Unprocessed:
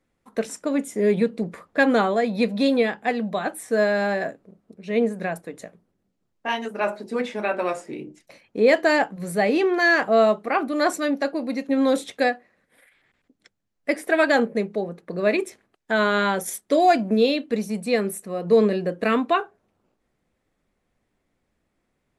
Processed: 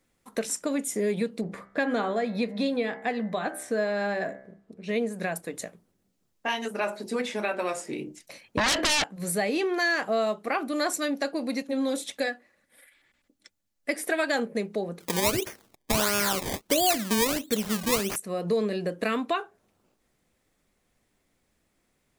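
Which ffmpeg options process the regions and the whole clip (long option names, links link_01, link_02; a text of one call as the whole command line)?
ffmpeg -i in.wav -filter_complex "[0:a]asettb=1/sr,asplit=3[link_01][link_02][link_03];[link_01]atrim=end=1.414[link_04];[link_02]atrim=start=1.41:end=4.89,asetpts=PTS-STARTPTS,afade=type=in:duration=0.004:curve=qsin,afade=type=out:start_time=3.476:duration=0.004:curve=qsin,lowpass=frequency=2400:poles=1,bandreject=frequency=65.61:width_type=h:width=4,bandreject=frequency=131.22:width_type=h:width=4,bandreject=frequency=196.83:width_type=h:width=4,bandreject=frequency=262.44:width_type=h:width=4,bandreject=frequency=328.05:width_type=h:width=4,bandreject=frequency=393.66:width_type=h:width=4,bandreject=frequency=459.27:width_type=h:width=4,bandreject=frequency=524.88:width_type=h:width=4,bandreject=frequency=590.49:width_type=h:width=4,bandreject=frequency=656.1:width_type=h:width=4,bandreject=frequency=721.71:width_type=h:width=4,bandreject=frequency=787.32:width_type=h:width=4,bandreject=frequency=852.93:width_type=h:width=4,bandreject=frequency=918.54:width_type=h:width=4,bandreject=frequency=984.15:width_type=h:width=4,bandreject=frequency=1049.76:width_type=h:width=4,bandreject=frequency=1115.37:width_type=h:width=4,bandreject=frequency=1180.98:width_type=h:width=4,bandreject=frequency=1246.59:width_type=h:width=4,bandreject=frequency=1312.2:width_type=h:width=4,bandreject=frequency=1377.81:width_type=h:width=4,bandreject=frequency=1443.42:width_type=h:width=4,bandreject=frequency=1509.03:width_type=h:width=4,bandreject=frequency=1574.64:width_type=h:width=4,bandreject=frequency=1640.25:width_type=h:width=4,bandreject=frequency=1705.86:width_type=h:width=4,bandreject=frequency=1771.47:width_type=h:width=4,bandreject=frequency=1837.08:width_type=h:width=4,bandreject=frequency=1902.69:width_type=h:width=4,bandreject=frequency=1968.3:width_type=h:width=4,bandreject=frequency=2033.91:width_type=h:width=4,bandreject=frequency=2099.52:width_type=h:width=4,bandreject=frequency=2165.13:width_type=h:width=4,bandreject=frequency=2230.74:width_type=h:width=4[link_05];[link_03]atrim=start=4.886[link_06];[link_04][link_05]acrossfade=duration=0.004:curve1=hsin:curve2=qsin[link_07];[link_07][link_06]acrossfade=duration=0.004:curve1=qsin:curve2=hsin,asettb=1/sr,asplit=3[link_08][link_09][link_10];[link_08]atrim=end=8.574[link_11];[link_09]atrim=start=8.57:end=9.04,asetpts=PTS-STARTPTS,afade=type=in:duration=0.004:curve=qsin,afade=type=out:start_time=0.466:duration=0.004:curve=qsin,bass=frequency=250:gain=2,treble=frequency=4000:gain=-15,acrossover=split=180|3000[link_12][link_13][link_14];[link_13]acompressor=threshold=-24dB:ratio=4:attack=3.2:release=140:knee=2.83:detection=peak[link_15];[link_12][link_15][link_14]amix=inputs=3:normalize=0,aeval=exprs='0.2*sin(PI/2*5.62*val(0)/0.2)':channel_layout=same[link_16];[link_10]atrim=start=9.036[link_17];[link_11][link_16]acrossfade=duration=0.004:curve1=hsin:curve2=qsin[link_18];[link_18][link_17]acrossfade=duration=0.004:curve1=qsin:curve2=hsin,asettb=1/sr,asplit=3[link_19][link_20][link_21];[link_19]atrim=end=11.624[link_22];[link_20]atrim=start=11.62:end=13.9,asetpts=PTS-STARTPTS,afade=type=in:duration=0.004:curve=qsin,afade=type=out:start_time=2.276:duration=0.004:curve=qsin,aecho=1:1:3.5:0.36,atrim=end_sample=100548,flanger=delay=0.9:depth=2.5:regen=-67:speed=1.9:shape=triangular[link_23];[link_21]atrim=start=13.896[link_24];[link_22][link_23]acrossfade=duration=0.004:curve1=hsin:curve2=qsin[link_25];[link_25][link_24]acrossfade=duration=0.004:curve1=qsin:curve2=hsin,asettb=1/sr,asplit=3[link_26][link_27][link_28];[link_26]atrim=end=15.004[link_29];[link_27]atrim=start=15:end=18.16,asetpts=PTS-STARTPTS,afade=type=in:duration=0.004:curve=qsin,afade=type=out:start_time=3.156:duration=0.004:curve=qsin,acrusher=samples=22:mix=1:aa=0.000001:lfo=1:lforange=22:lforate=1.5,acontrast=34[link_30];[link_28]atrim=start=18.156[link_31];[link_29][link_30]acrossfade=duration=0.004:curve1=hsin:curve2=qsin[link_32];[link_32][link_31]acrossfade=duration=0.004:curve1=qsin:curve2=hsin,highshelf=frequency=3500:gain=11,acompressor=threshold=-27dB:ratio=2.5" out.wav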